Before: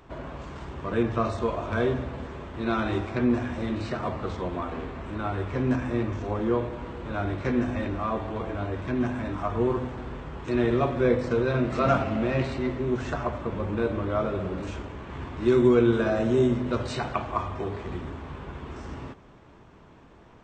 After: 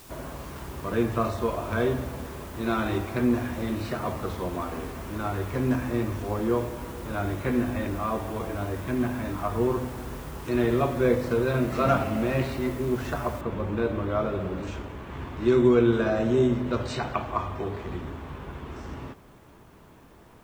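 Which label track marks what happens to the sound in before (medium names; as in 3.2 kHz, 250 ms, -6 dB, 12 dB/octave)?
6.580000	9.620000	brick-wall FIR low-pass 4.1 kHz
13.410000	13.410000	noise floor step -51 dB -68 dB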